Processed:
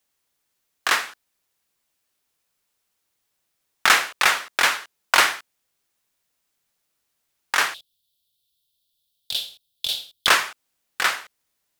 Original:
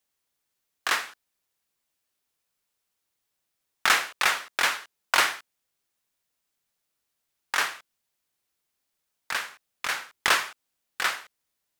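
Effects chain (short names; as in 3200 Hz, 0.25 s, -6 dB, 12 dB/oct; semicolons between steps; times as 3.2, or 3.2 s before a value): 7.74–10.27 EQ curve 120 Hz 0 dB, 260 Hz -12 dB, 650 Hz -9 dB, 1100 Hz -30 dB, 2000 Hz -27 dB, 3500 Hz +11 dB, 6300 Hz -6 dB, 12000 Hz +2 dB; gain +5 dB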